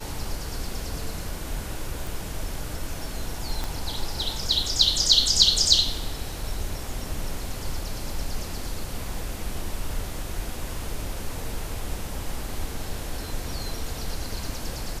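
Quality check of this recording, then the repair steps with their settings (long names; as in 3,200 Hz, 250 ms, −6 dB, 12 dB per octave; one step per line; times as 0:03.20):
0:02.07: click
0:03.64: click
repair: click removal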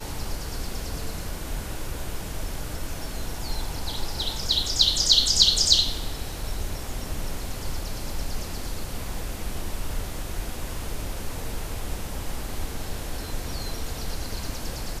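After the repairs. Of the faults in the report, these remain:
0:03.64: click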